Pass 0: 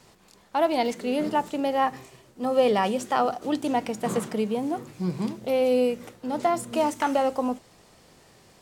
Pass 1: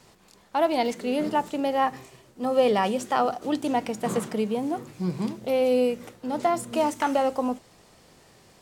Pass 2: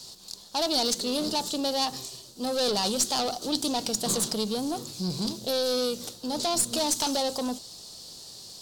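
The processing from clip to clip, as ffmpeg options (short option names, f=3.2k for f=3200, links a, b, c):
-af anull
-af "asoftclip=type=tanh:threshold=-24.5dB,highshelf=f=3k:t=q:w=3:g=12.5,aeval=exprs='0.376*(cos(1*acos(clip(val(0)/0.376,-1,1)))-cos(1*PI/2))+0.0168*(cos(6*acos(clip(val(0)/0.376,-1,1)))-cos(6*PI/2))':c=same"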